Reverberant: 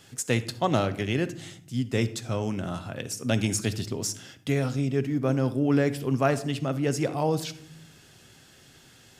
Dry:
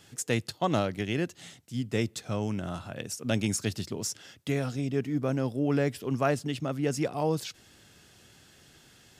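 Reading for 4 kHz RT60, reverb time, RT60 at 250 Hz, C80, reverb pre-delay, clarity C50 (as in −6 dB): 0.40 s, 0.70 s, 1.1 s, 19.0 dB, 8 ms, 14.5 dB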